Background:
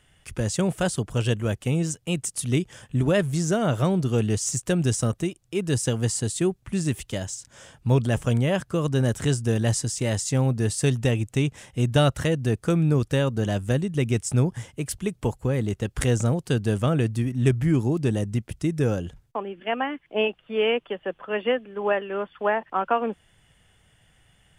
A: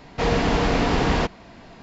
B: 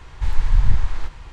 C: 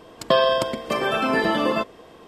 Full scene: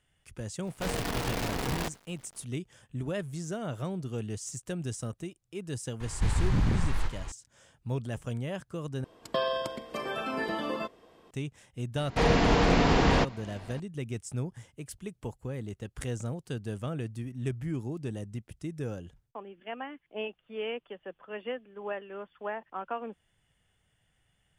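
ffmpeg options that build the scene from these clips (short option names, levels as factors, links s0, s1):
-filter_complex "[1:a]asplit=2[s0][s1];[0:a]volume=0.237[s2];[s0]acrusher=bits=4:dc=4:mix=0:aa=0.000001[s3];[2:a]aeval=exprs='0.112*(abs(mod(val(0)/0.112+3,4)-2)-1)':c=same[s4];[s2]asplit=2[s5][s6];[s5]atrim=end=9.044[s7];[3:a]atrim=end=2.27,asetpts=PTS-STARTPTS,volume=0.266[s8];[s6]atrim=start=11.306[s9];[s3]atrim=end=1.82,asetpts=PTS-STARTPTS,volume=0.224,afade=t=in:d=0.004:c=hsin,afade=t=out:st=1.816:d=0.004:c=hsin,adelay=620[s10];[s4]atrim=end=1.32,asetpts=PTS-STARTPTS,volume=0.944,afade=t=in:d=0.004:c=hsin,afade=t=out:st=1.316:d=0.004:c=hsin,adelay=6000[s11];[s1]atrim=end=1.82,asetpts=PTS-STARTPTS,volume=0.75,afade=t=in:d=0.004:c=hsin,afade=t=out:st=1.816:d=0.004:c=hsin,adelay=11980[s12];[s7][s8]acrossfade=d=0.004:c1=hsin:c2=hsin[s13];[s13][s9]acrossfade=d=0.004:c1=hsin:c2=hsin[s14];[s14][s10][s11][s12]amix=inputs=4:normalize=0"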